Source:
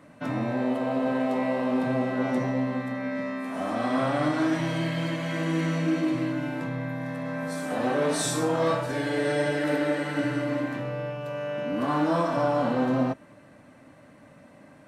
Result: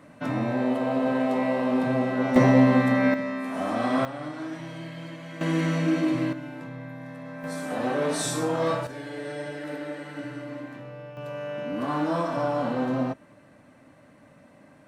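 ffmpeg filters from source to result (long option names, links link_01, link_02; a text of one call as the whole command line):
ffmpeg -i in.wav -af "asetnsamples=nb_out_samples=441:pad=0,asendcmd='2.36 volume volume 10dB;3.14 volume volume 1.5dB;4.05 volume volume -10dB;5.41 volume volume 1.5dB;6.33 volume volume -7dB;7.44 volume volume -1dB;8.87 volume volume -9dB;11.17 volume volume -2dB',volume=1.5dB" out.wav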